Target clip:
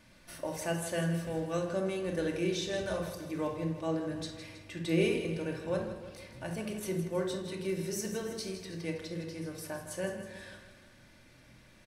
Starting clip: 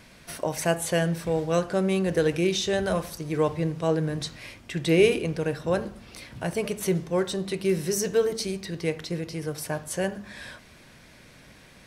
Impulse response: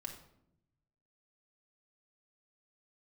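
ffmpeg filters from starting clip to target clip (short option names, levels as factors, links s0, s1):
-filter_complex "[0:a]aecho=1:1:160|320|480|640|800|960:0.299|0.158|0.0839|0.0444|0.0236|0.0125[s0];[1:a]atrim=start_sample=2205,afade=t=out:st=0.17:d=0.01,atrim=end_sample=7938[s1];[s0][s1]afir=irnorm=-1:irlink=0,volume=0.501"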